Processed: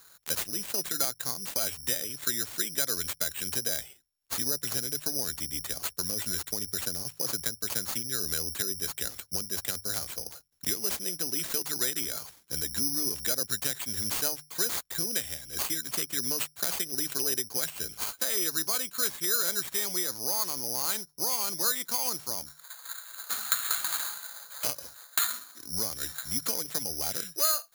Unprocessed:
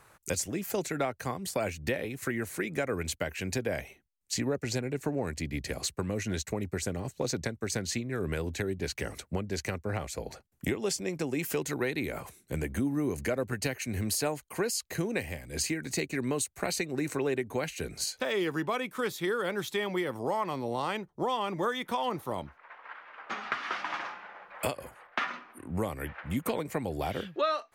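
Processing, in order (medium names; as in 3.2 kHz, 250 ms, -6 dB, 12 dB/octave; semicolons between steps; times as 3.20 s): peaking EQ 1.5 kHz +9.5 dB 0.47 oct; hum notches 50/100/150 Hz; careless resampling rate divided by 8×, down none, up zero stuff; trim -9 dB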